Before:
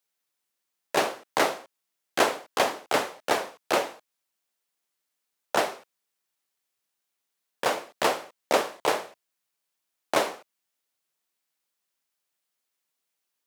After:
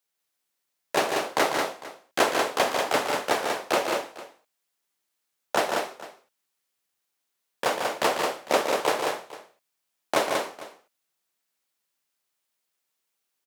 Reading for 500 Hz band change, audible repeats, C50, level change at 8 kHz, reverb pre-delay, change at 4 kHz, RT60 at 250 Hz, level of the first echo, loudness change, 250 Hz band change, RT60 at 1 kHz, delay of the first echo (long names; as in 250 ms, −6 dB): +2.0 dB, 3, no reverb audible, +2.0 dB, no reverb audible, +2.0 dB, no reverb audible, −7.0 dB, +1.5 dB, +2.0 dB, no reverb audible, 146 ms